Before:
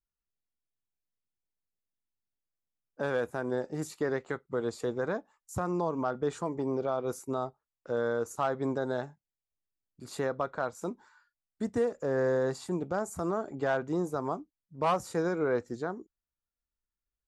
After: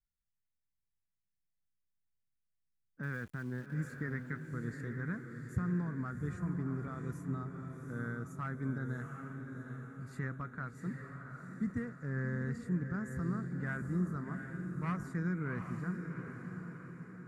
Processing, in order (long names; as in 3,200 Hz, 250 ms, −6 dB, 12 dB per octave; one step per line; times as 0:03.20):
drawn EQ curve 180 Hz 0 dB, 560 Hz −27 dB, 840 Hz −26 dB, 1,300 Hz −10 dB, 2,000 Hz −4 dB, 3,000 Hz −24 dB, 9,200 Hz −18 dB
0:03.03–0:03.74: centre clipping without the shift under −58 dBFS
on a send: feedback delay with all-pass diffusion 748 ms, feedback 52%, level −6 dB
on the sum: level +3 dB